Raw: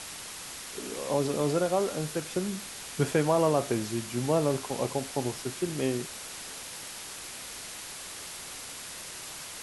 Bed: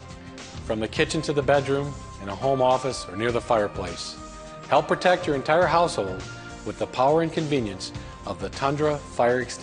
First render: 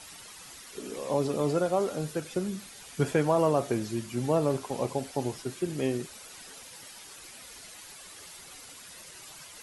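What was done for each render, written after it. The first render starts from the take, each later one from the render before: denoiser 10 dB, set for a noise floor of -42 dBFS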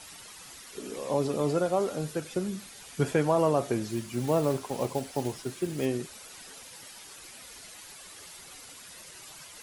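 3.88–5.87 block floating point 5-bit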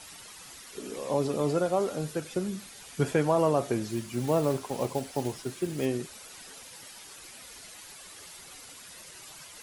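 nothing audible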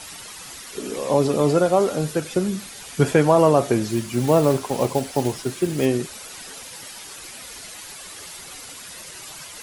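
gain +9 dB

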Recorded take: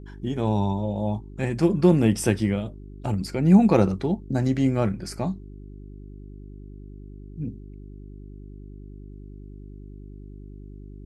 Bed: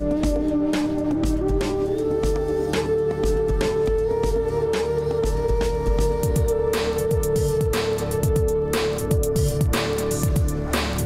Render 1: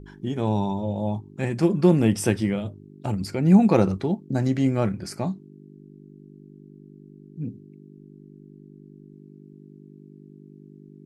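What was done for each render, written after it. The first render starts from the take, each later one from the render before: de-hum 50 Hz, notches 2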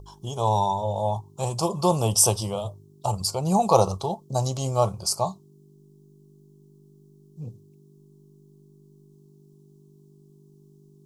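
EQ curve 120 Hz 0 dB, 280 Hz -17 dB, 420 Hz -2 dB, 620 Hz +6 dB, 1100 Hz +11 dB, 1800 Hz -27 dB, 3000 Hz +3 dB, 5800 Hz +14 dB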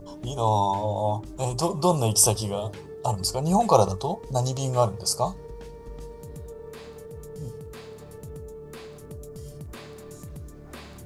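add bed -19.5 dB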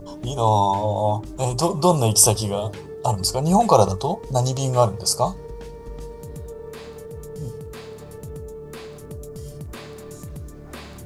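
gain +4.5 dB; limiter -1 dBFS, peak gain reduction 2.5 dB

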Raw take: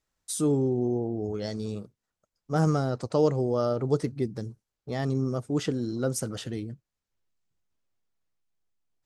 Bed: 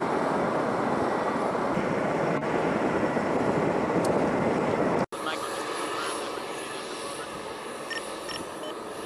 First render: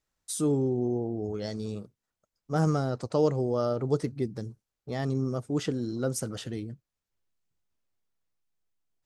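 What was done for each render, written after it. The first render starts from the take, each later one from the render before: gain -1.5 dB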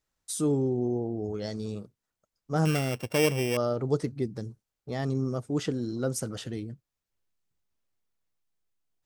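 2.65–3.57 sample sorter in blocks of 16 samples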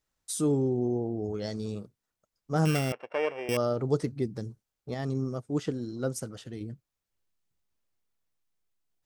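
2.92–3.49 Butterworth band-pass 1000 Hz, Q 0.68; 4.94–6.61 upward expander, over -46 dBFS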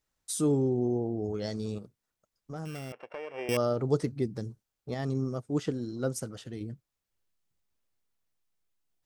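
1.78–3.34 compressor 3:1, threshold -39 dBFS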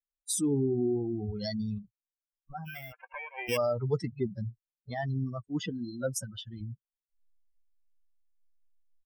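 per-bin expansion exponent 3; fast leveller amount 50%

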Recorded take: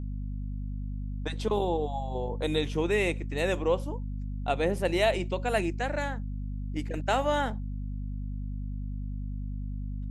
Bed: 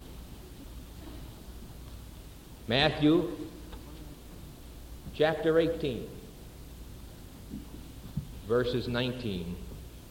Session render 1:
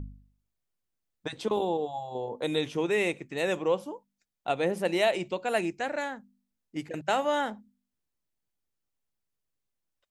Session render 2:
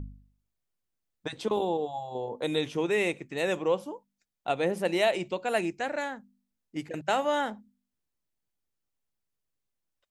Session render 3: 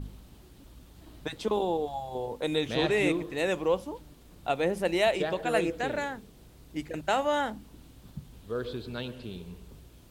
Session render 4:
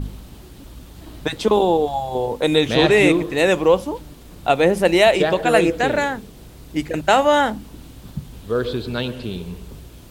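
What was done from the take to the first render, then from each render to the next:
de-hum 50 Hz, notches 5
nothing audible
add bed -6 dB
gain +12 dB; limiter -3 dBFS, peak gain reduction 1.5 dB

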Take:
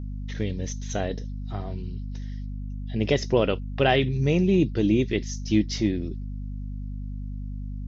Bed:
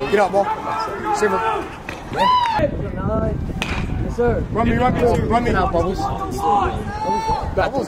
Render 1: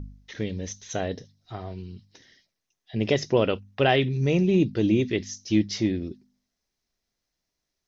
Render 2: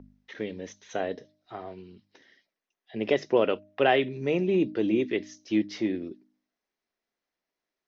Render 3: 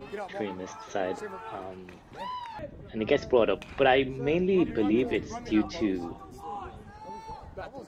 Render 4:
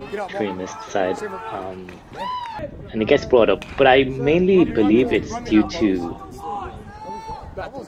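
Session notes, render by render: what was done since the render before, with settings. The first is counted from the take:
de-hum 50 Hz, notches 5
three-band isolator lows -19 dB, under 230 Hz, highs -14 dB, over 3100 Hz; de-hum 307.3 Hz, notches 2
add bed -21.5 dB
gain +9.5 dB; limiter -3 dBFS, peak gain reduction 2.5 dB

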